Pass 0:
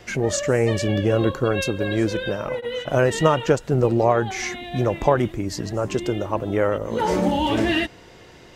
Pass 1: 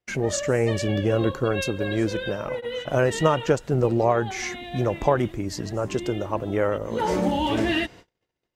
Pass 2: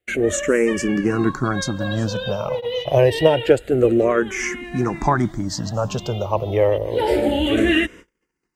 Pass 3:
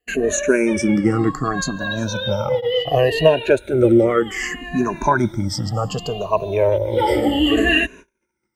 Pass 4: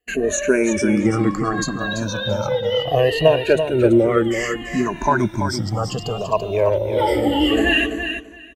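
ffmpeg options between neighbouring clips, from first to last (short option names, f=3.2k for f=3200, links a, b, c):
-af "agate=range=-37dB:threshold=-41dB:ratio=16:detection=peak,volume=-2.5dB"
-filter_complex "[0:a]asplit=2[a][b];[b]afreqshift=-0.27[c];[a][c]amix=inputs=2:normalize=1,volume=7.5dB"
-af "afftfilt=real='re*pow(10,17/40*sin(2*PI*(1.5*log(max(b,1)*sr/1024/100)/log(2)-(-0.66)*(pts-256)/sr)))':imag='im*pow(10,17/40*sin(2*PI*(1.5*log(max(b,1)*sr/1024/100)/log(2)-(-0.66)*(pts-256)/sr)))':win_size=1024:overlap=0.75,volume=-1.5dB"
-af "aecho=1:1:336|672|1008:0.398|0.0637|0.0102,volume=-1dB"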